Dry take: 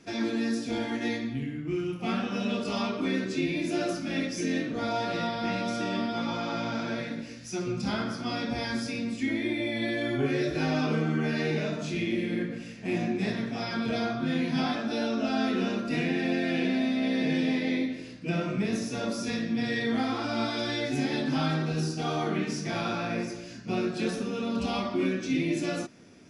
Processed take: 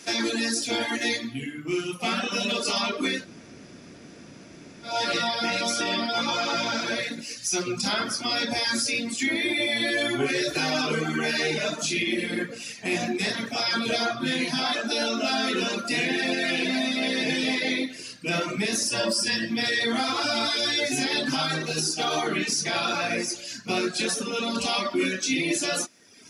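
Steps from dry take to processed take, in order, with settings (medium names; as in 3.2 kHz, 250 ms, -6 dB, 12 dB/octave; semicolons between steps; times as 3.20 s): RIAA curve recording; reverb removal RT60 0.91 s; 3.17–4.94 s: room tone, crossfade 0.24 s; 18.87–19.50 s: rippled EQ curve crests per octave 1.3, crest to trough 12 dB; peak limiter -24.5 dBFS, peak gain reduction 6.5 dB; trim +8.5 dB; Vorbis 96 kbps 32 kHz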